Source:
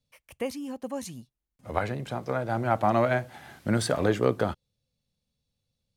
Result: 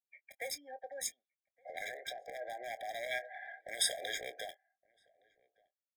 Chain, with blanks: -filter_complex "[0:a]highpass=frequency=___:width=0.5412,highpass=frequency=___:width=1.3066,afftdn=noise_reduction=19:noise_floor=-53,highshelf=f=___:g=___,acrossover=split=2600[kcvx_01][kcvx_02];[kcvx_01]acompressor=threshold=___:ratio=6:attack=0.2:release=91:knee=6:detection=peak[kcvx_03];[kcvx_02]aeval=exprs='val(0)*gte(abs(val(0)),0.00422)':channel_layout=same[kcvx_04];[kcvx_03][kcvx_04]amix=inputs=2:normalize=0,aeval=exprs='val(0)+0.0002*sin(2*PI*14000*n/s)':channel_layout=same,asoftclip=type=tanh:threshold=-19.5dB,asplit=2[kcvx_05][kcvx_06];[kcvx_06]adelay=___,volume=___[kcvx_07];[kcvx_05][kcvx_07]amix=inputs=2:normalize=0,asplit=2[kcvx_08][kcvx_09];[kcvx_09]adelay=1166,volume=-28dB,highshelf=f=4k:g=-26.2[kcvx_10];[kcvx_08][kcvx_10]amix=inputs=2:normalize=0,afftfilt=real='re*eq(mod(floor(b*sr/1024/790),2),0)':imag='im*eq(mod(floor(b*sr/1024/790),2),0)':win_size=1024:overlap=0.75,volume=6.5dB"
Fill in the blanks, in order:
710, 710, 8.4k, 3, -41dB, 24, -13dB